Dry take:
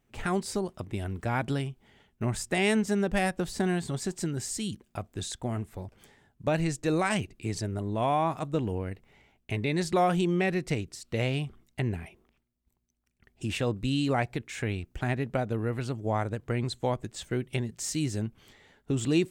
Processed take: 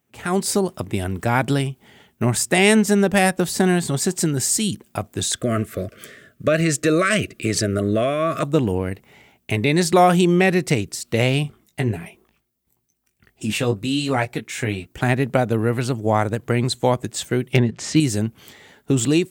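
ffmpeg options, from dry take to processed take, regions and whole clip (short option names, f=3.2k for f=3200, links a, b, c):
-filter_complex "[0:a]asettb=1/sr,asplit=3[a][b][c];[a]atrim=end=5.334[d];[b]atrim=start=5.33:end=8.43,asetpts=PTS-STARTPTS,afade=t=in:d=0.004:c=qsin,afade=t=out:st=3.096:d=0.004:c=qsin,equalizer=f=1.1k:w=0.38:g=8.5,acompressor=threshold=-26dB:ratio=2.5:attack=3.2:release=140:knee=1:detection=peak,asuperstop=centerf=870:order=12:qfactor=2[e];[c]atrim=start=8.426[f];[d][e]acrossfade=d=0.004:c1=hsin:c2=qsin[g];[g][f]acrossfade=d=0.004:c1=qsin:c2=hsin,asettb=1/sr,asplit=3[h][i][j];[h]atrim=end=11.434[k];[i]atrim=start=11.43:end=14.98,asetpts=PTS-STARTPTS,afade=t=in:d=0.004:c=qsin,afade=t=out:st=3.546:d=0.004:c=qsin,flanger=delay=0.3:depth=8:regen=48:speed=1.1:shape=triangular,asplit=2[l][m];[m]adelay=19,volume=-7dB[n];[l][n]amix=inputs=2:normalize=0,atrim=end_sample=156555[o];[j]atrim=start=14.976[p];[k][o]acrossfade=d=0.004:c1=hsin:c2=qsin[q];[q][p]acrossfade=d=0.004:c1=qsin:c2=hsin,asettb=1/sr,asplit=3[r][s][t];[r]atrim=end=17.534[u];[s]atrim=start=17.53:end=18,asetpts=PTS-STARTPTS,afade=t=in:d=0.004:c=qsin,afade=t=out:st=0.466:d=0.004:c=qsin,lowpass=3k,acontrast=57,volume=14dB,asoftclip=hard,volume=-14dB[v];[t]atrim=start=17.996[w];[u][v]acrossfade=d=0.004:c1=hsin:c2=qsin[x];[x][w]acrossfade=d=0.004:c1=qsin:c2=hsin,highpass=100,highshelf=f=9.9k:g=12,dynaudnorm=f=130:g=5:m=11dB"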